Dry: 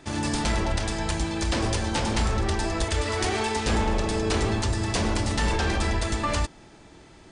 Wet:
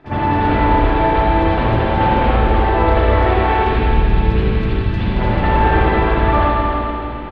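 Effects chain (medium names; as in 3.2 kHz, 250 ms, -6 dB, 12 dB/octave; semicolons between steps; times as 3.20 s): peaking EQ 820 Hz +3 dB 2.5 oct, from 3.51 s -14.5 dB, from 5.14 s +3 dB; compression, threshold -28 dBFS, peak gain reduction 8.5 dB; distance through air 390 m; feedback delay 295 ms, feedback 43%, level -7 dB; reverberation RT60 2.2 s, pre-delay 44 ms, DRR -18 dB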